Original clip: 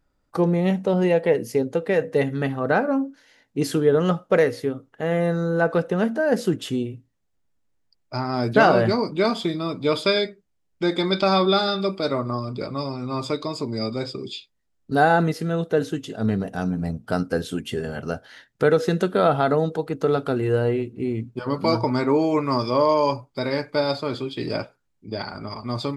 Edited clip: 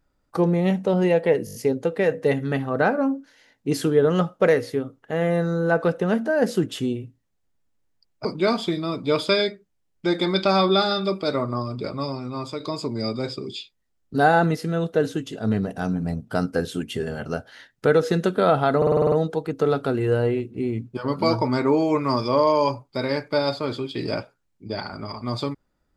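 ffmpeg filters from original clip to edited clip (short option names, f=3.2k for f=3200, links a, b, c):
-filter_complex "[0:a]asplit=15[a][b][c][d][e][f][g][h][i][j][k][l][m][n][o];[a]atrim=end=1.472[p];[b]atrim=start=1.448:end=1.472[q];[c]atrim=start=1.448:end=1.472[r];[d]atrim=start=1.448:end=1.472[s];[e]atrim=start=1.448:end=1.472[t];[f]atrim=start=1.448:end=8.152[u];[g]atrim=start=9.018:end=13.37,asetpts=PTS-STARTPTS,afade=t=out:st=3.842:d=0.51:silence=0.446684[v];[h]atrim=start=13.37:end=19.592,asetpts=PTS-STARTPTS,afade=t=in:d=0.004:c=hsin:silence=0.446684[w];[i]atrim=start=19.538:end=19.592[x];[j]atrim=start=19.538:end=19.592[y];[k]atrim=start=19.538:end=19.592[z];[l]atrim=start=19.538:end=19.592[aa];[m]atrim=start=19.538:end=19.592[ab];[n]atrim=start=19.538:end=19.592[ac];[o]atrim=start=19.538[ad];[p][q]acrossfade=d=0.004:c1=hsin:c2=hsin[ae];[ae][r]acrossfade=d=0.004:c1=hsin:c2=hsin[af];[af][s]acrossfade=d=0.004:c1=hsin:c2=hsin[ag];[ag][t]acrossfade=d=0.004:c1=hsin:c2=hsin[ah];[ah][u]acrossfade=d=0.004:c1=hsin:c2=hsin[ai];[v][w]concat=n=2:v=0:a=1[aj];[ai][aj]acrossfade=d=0.004:c1=hsin:c2=hsin[ak];[ak][x]acrossfade=d=0.004:c1=hsin:c2=hsin[al];[al][y]acrossfade=d=0.004:c1=hsin:c2=hsin[am];[am][z]acrossfade=d=0.004:c1=hsin:c2=hsin[an];[an][aa]acrossfade=d=0.004:c1=hsin:c2=hsin[ao];[ao][ab]acrossfade=d=0.004:c1=hsin:c2=hsin[ap];[ap][ac]acrossfade=d=0.004:c1=hsin:c2=hsin[aq];[aq][ad]acrossfade=d=0.004:c1=hsin:c2=hsin"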